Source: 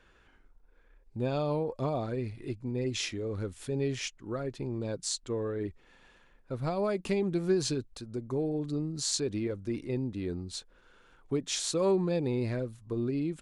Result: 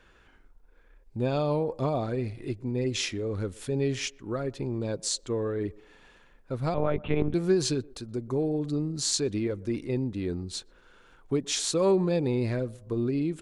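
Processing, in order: 6.74–7.34 s: monotone LPC vocoder at 8 kHz 150 Hz; band-passed feedback delay 123 ms, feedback 46%, band-pass 540 Hz, level -22 dB; trim +3.5 dB

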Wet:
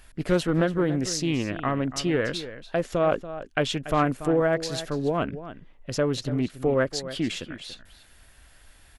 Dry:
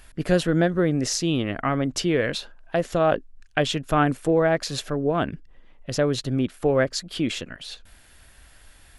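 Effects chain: echo from a far wall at 49 m, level -13 dB; loudspeaker Doppler distortion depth 0.23 ms; trim -2.5 dB

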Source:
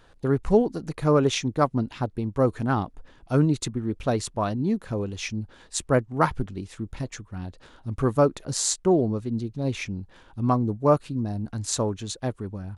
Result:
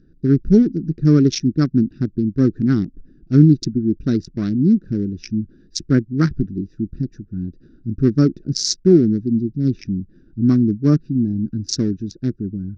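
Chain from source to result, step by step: local Wiener filter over 41 samples; FFT filter 110 Hz 0 dB, 160 Hz +8 dB, 350 Hz +7 dB, 510 Hz -13 dB, 920 Hz -26 dB, 1.5 kHz -2 dB, 3 kHz -7 dB, 5.5 kHz +13 dB, 8 kHz -18 dB; trim +4 dB

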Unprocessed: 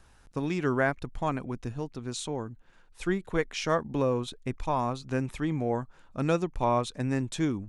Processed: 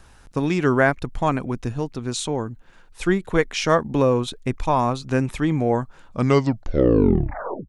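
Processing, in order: tape stop on the ending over 1.60 s; trim +8.5 dB

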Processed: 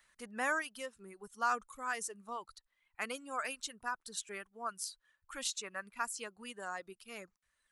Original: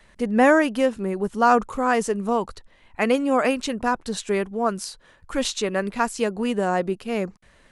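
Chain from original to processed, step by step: peaking EQ 1.3 kHz +10 dB 1.2 oct; reverb removal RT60 1.9 s; pre-emphasis filter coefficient 0.9; trim -6.5 dB

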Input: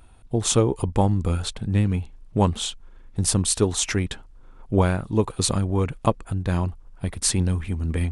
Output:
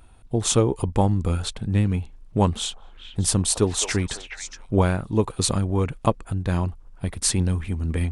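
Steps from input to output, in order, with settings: 2.50–4.74 s: repeats whose band climbs or falls 210 ms, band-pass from 790 Hz, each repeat 1.4 oct, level -3 dB

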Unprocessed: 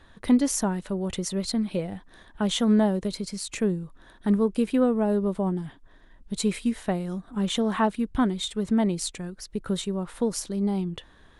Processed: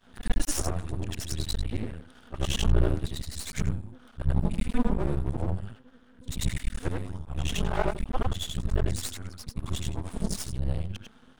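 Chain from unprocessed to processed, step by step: short-time spectra conjugated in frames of 207 ms; frequency shift -270 Hz; half-wave rectifier; trim +4.5 dB

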